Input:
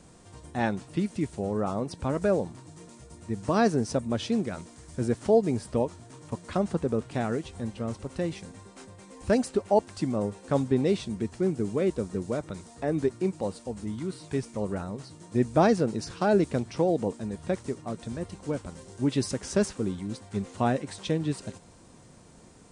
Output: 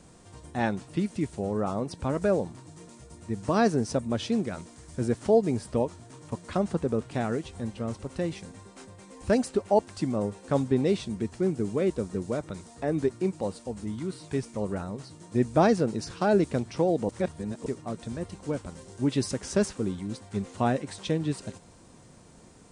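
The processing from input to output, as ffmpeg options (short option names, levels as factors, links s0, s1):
-filter_complex "[0:a]asplit=3[s0][s1][s2];[s0]atrim=end=17.092[s3];[s1]atrim=start=17.088:end=17.662,asetpts=PTS-STARTPTS,areverse[s4];[s2]atrim=start=17.658[s5];[s3][s4]acrossfade=d=0.004:c1=hsin:c2=hsin[s6];[s6][s5]acrossfade=d=0.004:c1=hsin:c2=hsin"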